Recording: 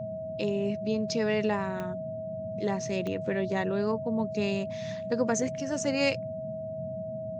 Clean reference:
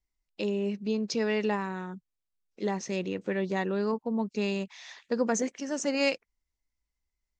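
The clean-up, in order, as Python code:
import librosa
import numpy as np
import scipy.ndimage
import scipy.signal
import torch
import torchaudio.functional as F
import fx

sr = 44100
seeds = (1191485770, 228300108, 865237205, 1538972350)

y = fx.fix_declick_ar(x, sr, threshold=10.0)
y = fx.notch(y, sr, hz=640.0, q=30.0)
y = fx.noise_reduce(y, sr, print_start_s=6.28, print_end_s=6.78, reduce_db=30.0)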